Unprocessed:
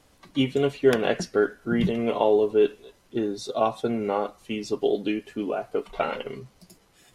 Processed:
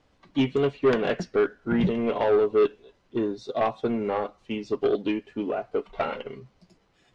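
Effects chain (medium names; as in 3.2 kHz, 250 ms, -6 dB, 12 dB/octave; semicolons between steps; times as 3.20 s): saturation -19.5 dBFS, distortion -11 dB; distance through air 130 m; upward expansion 1.5:1, over -39 dBFS; trim +5 dB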